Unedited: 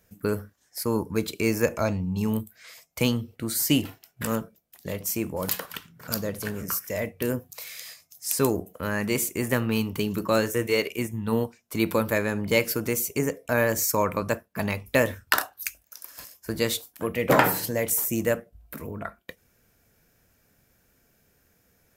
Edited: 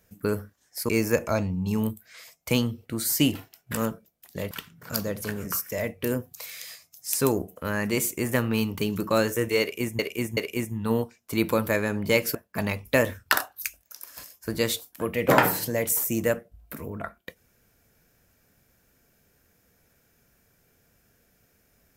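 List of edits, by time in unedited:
0.89–1.39 cut
5.01–5.69 cut
10.79–11.17 loop, 3 plays
12.77–14.36 cut

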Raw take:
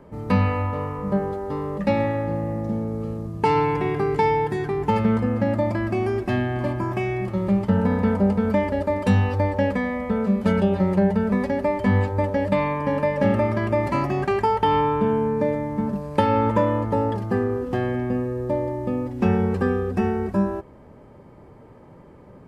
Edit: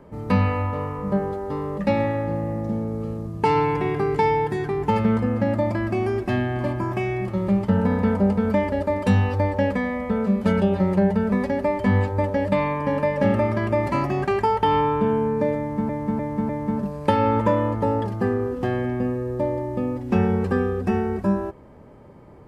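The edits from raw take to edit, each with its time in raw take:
15.59–15.89 loop, 4 plays

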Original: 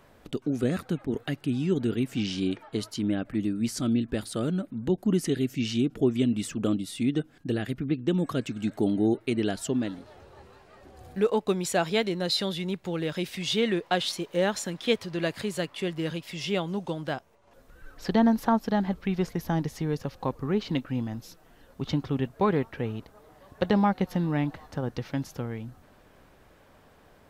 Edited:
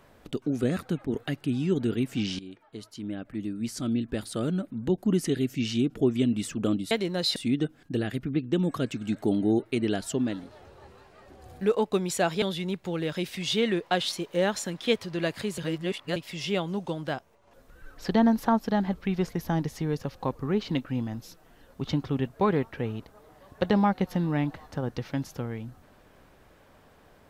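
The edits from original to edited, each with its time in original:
2.39–4.52 fade in, from -17.5 dB
11.97–12.42 move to 6.91
15.58–16.16 reverse

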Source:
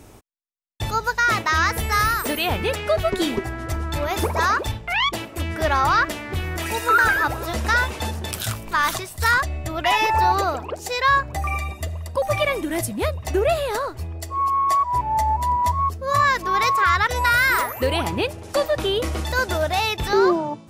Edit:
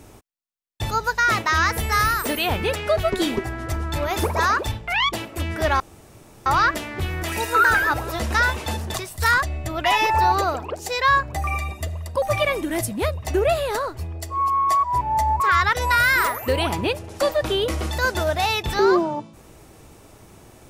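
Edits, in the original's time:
5.8 insert room tone 0.66 s
8.28–8.94 cut
15.4–16.74 cut

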